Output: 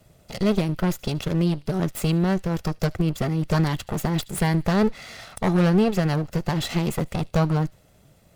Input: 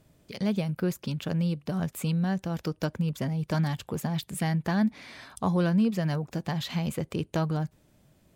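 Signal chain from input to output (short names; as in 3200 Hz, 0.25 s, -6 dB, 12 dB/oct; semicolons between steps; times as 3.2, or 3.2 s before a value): minimum comb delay 1.5 ms; thin delay 75 ms, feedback 49%, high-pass 2600 Hz, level -21 dB; gain +7.5 dB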